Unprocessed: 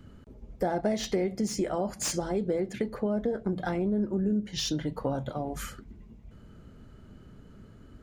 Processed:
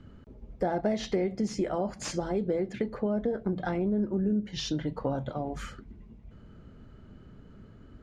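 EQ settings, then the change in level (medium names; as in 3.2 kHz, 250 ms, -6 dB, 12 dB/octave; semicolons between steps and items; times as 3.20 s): distance through air 76 m; treble shelf 8.7 kHz -5 dB; 0.0 dB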